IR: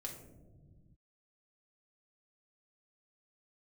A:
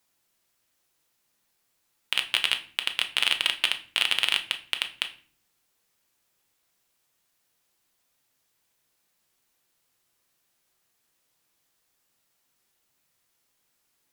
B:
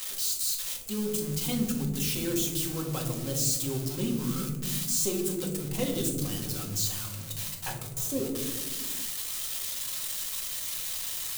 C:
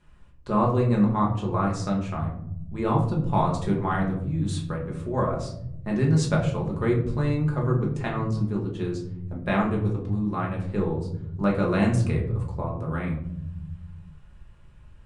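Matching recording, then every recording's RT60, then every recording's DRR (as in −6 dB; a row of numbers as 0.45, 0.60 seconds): B; 0.45 s, non-exponential decay, 0.75 s; 6.0, −0.5, −2.5 decibels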